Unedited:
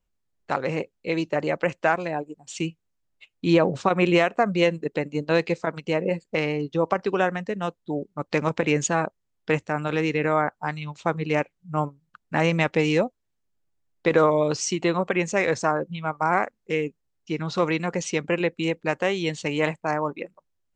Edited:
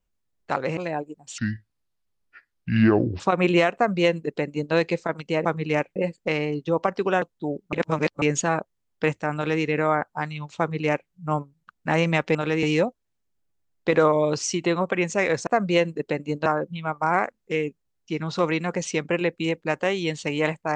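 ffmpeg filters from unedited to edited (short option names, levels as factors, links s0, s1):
-filter_complex "[0:a]asplit=13[s0][s1][s2][s3][s4][s5][s6][s7][s8][s9][s10][s11][s12];[s0]atrim=end=0.772[s13];[s1]atrim=start=1.968:end=2.584[s14];[s2]atrim=start=2.58:end=3.78,asetpts=PTS-STARTPTS,asetrate=29106,aresample=44100[s15];[s3]atrim=start=3.776:end=6.032[s16];[s4]atrim=start=11.048:end=11.562[s17];[s5]atrim=start=6.028:end=7.292[s18];[s6]atrim=start=7.678:end=8.192[s19];[s7]atrim=start=8.188:end=8.682,asetpts=PTS-STARTPTS,areverse[s20];[s8]atrim=start=8.678:end=12.812[s21];[s9]atrim=start=9.808:end=10.092[s22];[s10]atrim=start=12.808:end=15.652[s23];[s11]atrim=start=4.328:end=5.322[s24];[s12]atrim=start=15.648[s25];[s13][s14]acrossfade=d=0.004:c1=hsin:c2=hsin[s26];[s26][s15]acrossfade=d=0.004:c1=hsin:c2=hsin[s27];[s27][s16]acrossfade=d=0.004:c1=hsin:c2=hsin[s28];[s28][s17]acrossfade=d=0.004:c1=hsin:c2=hsin[s29];[s29][s18]acrossfade=d=0.004:c1=hsin:c2=hsin[s30];[s30][s19]acrossfade=d=0.004:c1=hsin:c2=hsin[s31];[s31][s20]acrossfade=d=0.004:c1=hsin:c2=hsin[s32];[s32][s21]acrossfade=d=0.004:c1=hsin:c2=hsin[s33];[s33][s22]acrossfade=d=0.004:c1=hsin:c2=hsin[s34];[s34][s23]acrossfade=d=0.004:c1=hsin:c2=hsin[s35];[s35][s24]acrossfade=d=0.004:c1=hsin:c2=hsin[s36];[s36][s25]acrossfade=d=0.004:c1=hsin:c2=hsin"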